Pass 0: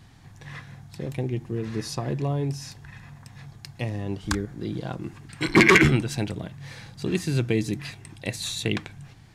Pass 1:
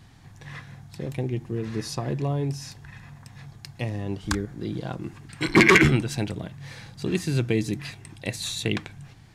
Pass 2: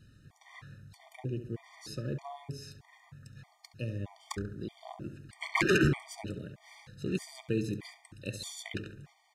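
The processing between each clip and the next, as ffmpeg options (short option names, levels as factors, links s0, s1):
-af anull
-filter_complex "[0:a]asplit=2[s0][s1];[s1]adelay=69,lowpass=f=2200:p=1,volume=0.355,asplit=2[s2][s3];[s3]adelay=69,lowpass=f=2200:p=1,volume=0.5,asplit=2[s4][s5];[s5]adelay=69,lowpass=f=2200:p=1,volume=0.5,asplit=2[s6][s7];[s7]adelay=69,lowpass=f=2200:p=1,volume=0.5,asplit=2[s8][s9];[s9]adelay=69,lowpass=f=2200:p=1,volume=0.5,asplit=2[s10][s11];[s11]adelay=69,lowpass=f=2200:p=1,volume=0.5[s12];[s0][s2][s4][s6][s8][s10][s12]amix=inputs=7:normalize=0,afftfilt=real='re*gt(sin(2*PI*1.6*pts/sr)*(1-2*mod(floor(b*sr/1024/610),2)),0)':imag='im*gt(sin(2*PI*1.6*pts/sr)*(1-2*mod(floor(b*sr/1024/610),2)),0)':win_size=1024:overlap=0.75,volume=0.447"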